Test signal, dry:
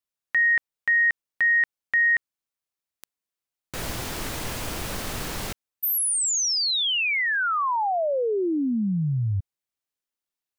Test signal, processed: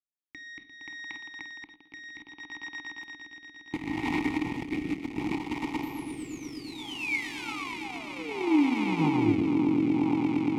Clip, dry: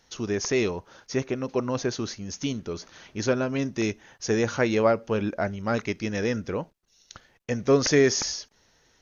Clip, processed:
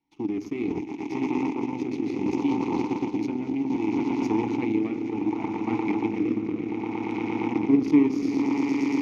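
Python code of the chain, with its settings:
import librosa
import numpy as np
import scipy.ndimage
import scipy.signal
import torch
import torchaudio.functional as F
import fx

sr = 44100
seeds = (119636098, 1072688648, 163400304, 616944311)

p1 = fx.low_shelf(x, sr, hz=180.0, db=11.5)
p2 = p1 + fx.echo_swell(p1, sr, ms=116, loudest=8, wet_db=-12.5, dry=0)
p3 = fx.room_shoebox(p2, sr, seeds[0], volume_m3=500.0, walls='furnished', distance_m=0.59)
p4 = fx.over_compress(p3, sr, threshold_db=-25.0, ratio=-0.5)
p5 = p3 + (p4 * 10.0 ** (1.0 / 20.0))
p6 = fx.cheby_harmonics(p5, sr, harmonics=(7, 8), levels_db=(-18, -26), full_scale_db=-2.5)
p7 = fx.rotary(p6, sr, hz=0.65)
p8 = fx.vowel_filter(p7, sr, vowel='u')
y = p8 * 10.0 ** (7.5 / 20.0)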